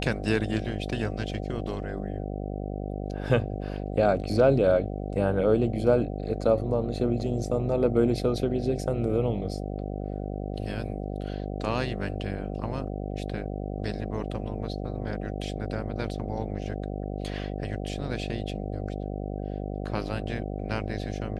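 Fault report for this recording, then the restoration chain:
buzz 50 Hz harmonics 15 -33 dBFS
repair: de-hum 50 Hz, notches 15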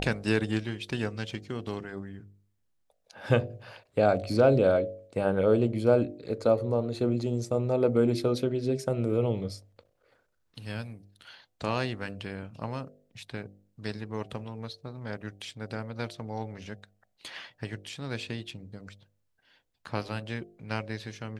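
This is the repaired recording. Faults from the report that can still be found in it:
none

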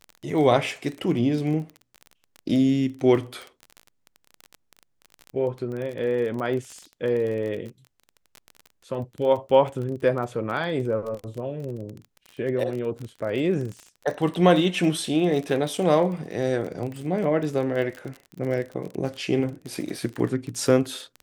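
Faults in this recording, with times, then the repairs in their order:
crackle 26/s -30 dBFS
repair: de-click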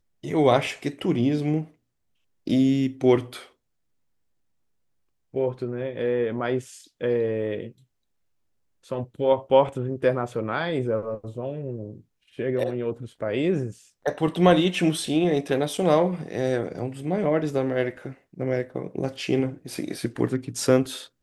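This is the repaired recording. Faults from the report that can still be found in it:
none

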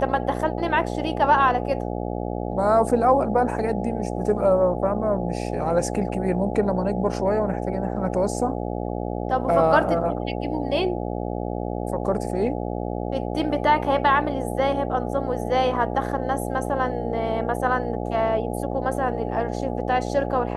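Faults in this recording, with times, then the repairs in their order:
buzz 60 Hz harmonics 14 -28 dBFS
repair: de-hum 60 Hz, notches 14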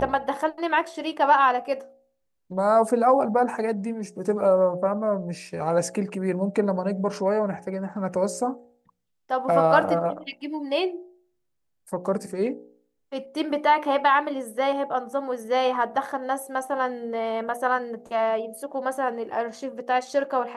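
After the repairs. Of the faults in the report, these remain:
none

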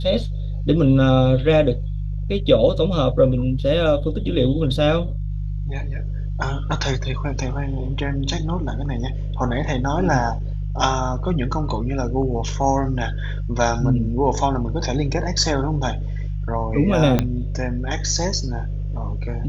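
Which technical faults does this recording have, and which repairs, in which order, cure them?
hum 50 Hz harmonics 3 -25 dBFS
17.19 pop -5 dBFS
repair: de-click; de-hum 50 Hz, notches 3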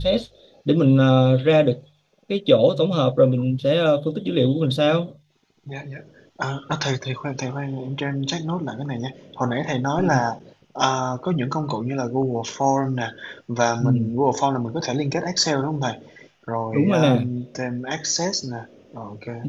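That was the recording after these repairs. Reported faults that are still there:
17.19 pop

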